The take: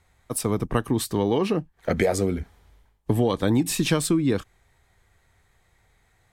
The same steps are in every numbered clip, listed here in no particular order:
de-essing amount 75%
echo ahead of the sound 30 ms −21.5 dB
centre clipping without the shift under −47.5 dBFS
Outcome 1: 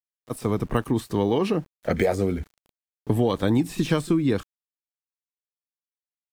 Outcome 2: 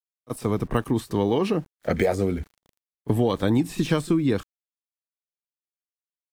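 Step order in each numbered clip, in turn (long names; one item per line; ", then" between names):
echo ahead of the sound, then de-essing, then centre clipping without the shift
centre clipping without the shift, then echo ahead of the sound, then de-essing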